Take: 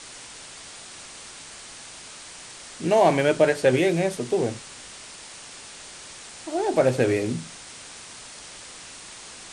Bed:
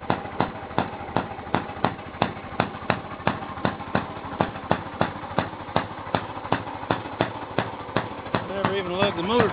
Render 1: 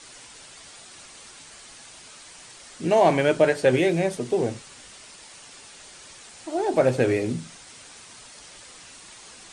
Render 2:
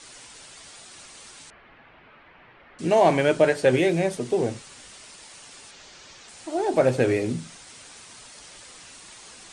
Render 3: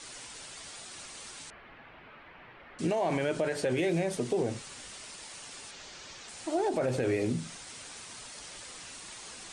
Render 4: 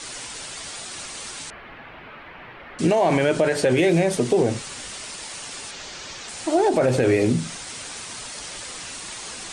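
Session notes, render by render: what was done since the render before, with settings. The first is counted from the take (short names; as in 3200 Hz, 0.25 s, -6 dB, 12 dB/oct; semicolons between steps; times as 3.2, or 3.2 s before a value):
denoiser 6 dB, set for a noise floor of -43 dBFS
1.5–2.79 inverse Chebyshev low-pass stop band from 7400 Hz, stop band 60 dB; 5.71–6.28 LPF 6700 Hz 24 dB/oct
limiter -17 dBFS, peak gain reduction 10 dB; compressor 2:1, threshold -28 dBFS, peak gain reduction 4 dB
gain +10.5 dB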